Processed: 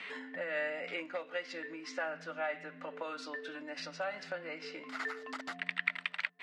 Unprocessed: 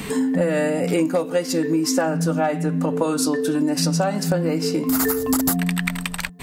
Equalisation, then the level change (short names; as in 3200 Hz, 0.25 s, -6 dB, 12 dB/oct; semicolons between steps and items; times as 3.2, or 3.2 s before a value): speaker cabinet 170–3100 Hz, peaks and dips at 600 Hz +7 dB, 1400 Hz +5 dB, 2000 Hz +7 dB; differentiator; 0.0 dB